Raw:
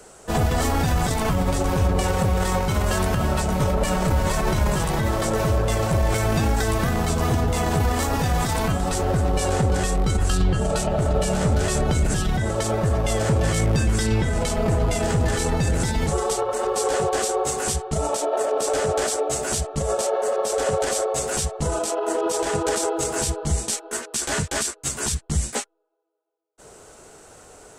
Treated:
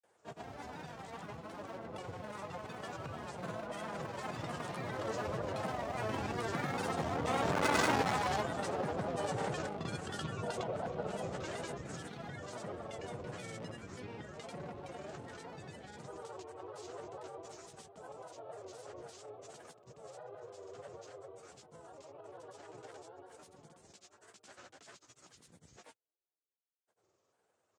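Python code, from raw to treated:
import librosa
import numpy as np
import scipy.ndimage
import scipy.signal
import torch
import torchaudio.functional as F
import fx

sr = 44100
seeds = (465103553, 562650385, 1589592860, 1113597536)

y = fx.octave_divider(x, sr, octaves=2, level_db=2.0)
y = fx.doppler_pass(y, sr, speed_mps=11, closest_m=2.2, pass_at_s=7.83)
y = 10.0 ** (-23.5 / 20.0) * np.tanh(y / 10.0 ** (-23.5 / 20.0))
y = scipy.signal.sosfilt(scipy.signal.butter(4, 130.0, 'highpass', fs=sr, output='sos'), y)
y = fx.granulator(y, sr, seeds[0], grain_ms=100.0, per_s=20.0, spray_ms=100.0, spread_st=3)
y = fx.peak_eq(y, sr, hz=13000.0, db=-14.5, octaves=1.3)
y = fx.rider(y, sr, range_db=4, speed_s=2.0)
y = fx.peak_eq(y, sr, hz=200.0, db=-7.0, octaves=1.5)
y = y * librosa.db_to_amplitude(7.5)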